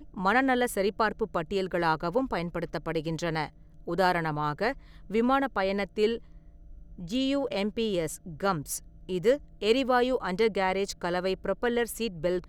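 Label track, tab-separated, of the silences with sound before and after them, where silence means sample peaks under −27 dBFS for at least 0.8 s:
6.160000	7.130000	silence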